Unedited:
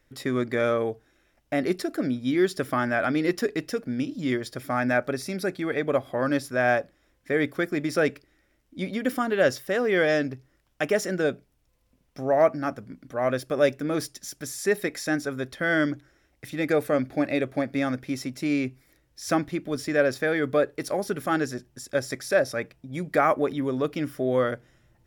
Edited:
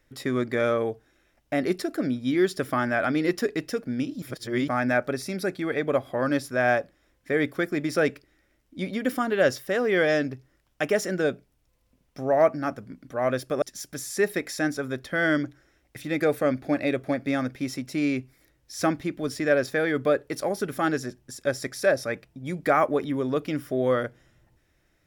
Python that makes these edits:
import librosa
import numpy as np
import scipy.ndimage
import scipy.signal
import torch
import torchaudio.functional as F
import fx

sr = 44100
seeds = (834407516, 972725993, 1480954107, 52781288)

y = fx.edit(x, sr, fx.reverse_span(start_s=4.22, length_s=0.46),
    fx.cut(start_s=13.62, length_s=0.48), tone=tone)